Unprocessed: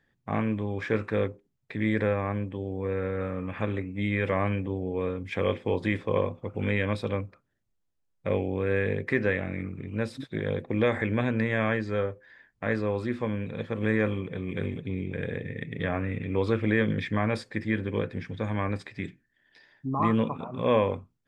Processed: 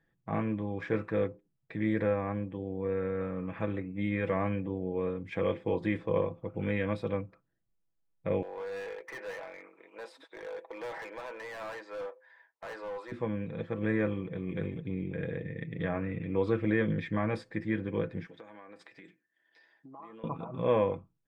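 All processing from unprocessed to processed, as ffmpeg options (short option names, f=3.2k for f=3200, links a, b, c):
-filter_complex "[0:a]asettb=1/sr,asplit=3[a][b][c];[a]atrim=end=8.424[d];[b]atrim=start=8.42:end=13.12,asetpts=PTS-STARTPTS,afade=t=in:d=0.004:c=qsin,afade=t=out:st=4.696:d=0.004:c=qsin,highpass=f=500:w=0.5412,highpass=f=500:w=1.3066,volume=34.5dB,asoftclip=hard,volume=-34.5dB,equalizer=f=930:t=o:w=0.29:g=10[e];[c]atrim=start=13.116[f];[d][e]acrossfade=d=0.004:c1=hsin:c2=qsin[g];[g][f]acrossfade=d=0.004:c1=qsin:c2=hsin,asettb=1/sr,asplit=3[h][i][j];[h]atrim=end=18.264[k];[i]atrim=start=18.26:end=20.24,asetpts=PTS-STARTPTS,afade=t=in:d=0.004:c=qsin,afade=t=out:st=1.976:d=0.004:c=qsin,bass=f=250:g=-14,treble=f=4k:g=2,acompressor=threshold=-41dB:ratio=8:attack=3.2:release=140:knee=1:detection=peak,highpass=190[l];[j]atrim=start=20.236[m];[k][l]acrossfade=d=0.004:c1=hsin:c2=qsin[n];[n][m]acrossfade=d=0.004:c1=qsin:c2=hsin,highshelf=f=2.4k:g=-9.5,aecho=1:1:6.1:0.46,volume=-3.5dB"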